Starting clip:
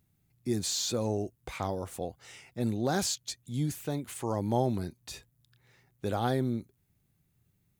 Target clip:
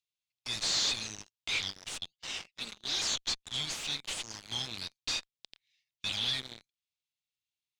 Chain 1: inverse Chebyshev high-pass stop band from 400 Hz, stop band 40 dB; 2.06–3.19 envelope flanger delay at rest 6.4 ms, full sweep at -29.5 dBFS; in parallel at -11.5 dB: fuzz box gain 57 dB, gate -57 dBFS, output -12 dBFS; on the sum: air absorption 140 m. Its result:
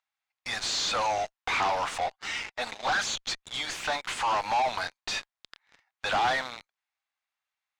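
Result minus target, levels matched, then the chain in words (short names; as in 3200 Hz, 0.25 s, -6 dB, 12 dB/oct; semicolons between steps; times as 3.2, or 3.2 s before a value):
1000 Hz band +17.0 dB
inverse Chebyshev high-pass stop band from 1400 Hz, stop band 40 dB; 2.06–3.19 envelope flanger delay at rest 6.4 ms, full sweep at -29.5 dBFS; in parallel at -11.5 dB: fuzz box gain 57 dB, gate -57 dBFS, output -12 dBFS; on the sum: air absorption 140 m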